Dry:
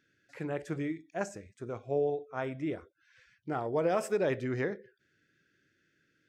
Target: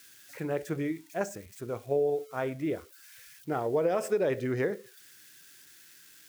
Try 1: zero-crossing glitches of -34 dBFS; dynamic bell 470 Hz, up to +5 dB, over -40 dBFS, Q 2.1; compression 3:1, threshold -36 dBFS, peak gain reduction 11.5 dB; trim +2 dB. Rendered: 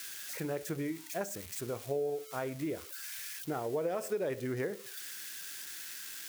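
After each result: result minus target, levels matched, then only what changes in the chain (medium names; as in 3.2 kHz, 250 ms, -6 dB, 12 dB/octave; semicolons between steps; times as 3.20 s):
zero-crossing glitches: distortion +11 dB; compression: peak gain reduction +6.5 dB
change: zero-crossing glitches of -45 dBFS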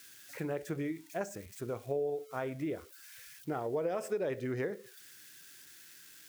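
compression: peak gain reduction +6.5 dB
change: compression 3:1, threshold -26 dBFS, peak gain reduction 4.5 dB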